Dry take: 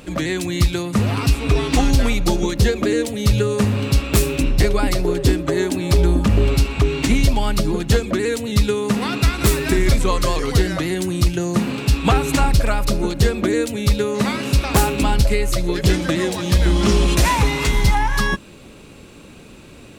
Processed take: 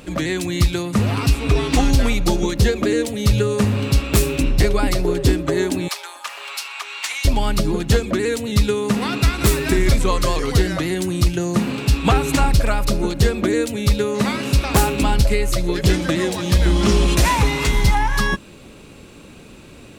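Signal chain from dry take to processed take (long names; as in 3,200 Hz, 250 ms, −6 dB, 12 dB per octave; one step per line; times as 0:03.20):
0:05.88–0:07.25: high-pass filter 900 Hz 24 dB per octave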